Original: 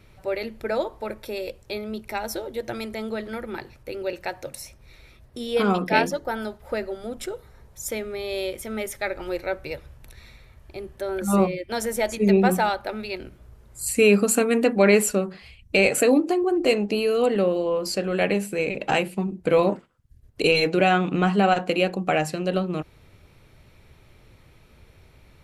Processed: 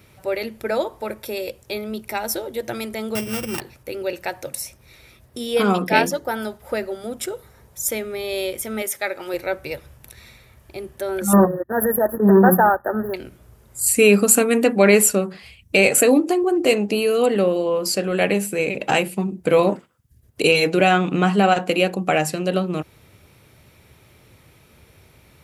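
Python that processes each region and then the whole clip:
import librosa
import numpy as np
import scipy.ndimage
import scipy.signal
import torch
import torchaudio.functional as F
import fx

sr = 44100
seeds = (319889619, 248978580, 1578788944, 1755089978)

y = fx.chain(x, sr, fx.sample_sort(block=16),
    fx.peak_eq(hz=120.0, db=14.5, octaves=1.1), at=(3.15, 3.6))
y = fx.chain(y, sr, fx.highpass(hz=120.0, slope=6),
    fx.low_shelf(hz=190.0, db=-9.5), at=(8.82, 9.34))
y = fx.chain(y, sr, fx.transient(attack_db=-11, sustain_db=-7),
    fx.leveller(passes=2),
    fx.brickwall_bandstop(low_hz=1900.0, high_hz=11000.0), at=(11.33, 13.14))
y = scipy.signal.sosfilt(scipy.signal.butter(2, 75.0, 'highpass', fs=sr, output='sos'), y)
y = fx.high_shelf(y, sr, hz=7600.0, db=10.5)
y = fx.notch(y, sr, hz=4200.0, q=24.0)
y = y * 10.0 ** (3.0 / 20.0)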